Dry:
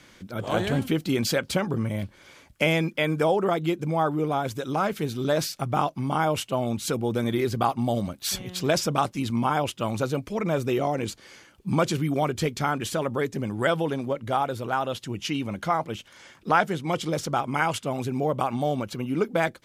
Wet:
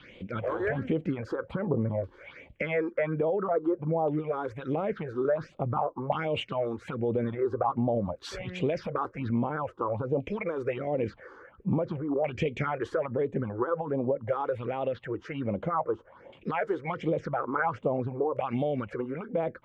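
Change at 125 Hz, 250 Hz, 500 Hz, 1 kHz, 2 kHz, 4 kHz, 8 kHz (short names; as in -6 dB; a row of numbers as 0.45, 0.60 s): -5.0 dB, -4.5 dB, -2.0 dB, -6.5 dB, -7.0 dB, -13.0 dB, under -20 dB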